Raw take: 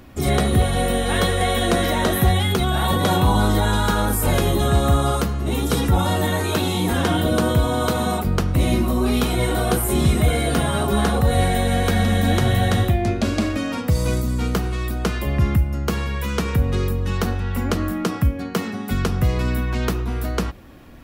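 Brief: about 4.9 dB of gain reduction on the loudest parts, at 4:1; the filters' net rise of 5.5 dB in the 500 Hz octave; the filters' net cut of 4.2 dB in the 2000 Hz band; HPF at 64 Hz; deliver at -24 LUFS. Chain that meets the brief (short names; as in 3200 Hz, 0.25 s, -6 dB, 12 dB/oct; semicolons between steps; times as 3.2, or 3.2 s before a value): HPF 64 Hz; bell 500 Hz +7 dB; bell 2000 Hz -6 dB; compressor 4:1, threshold -18 dBFS; gain -1 dB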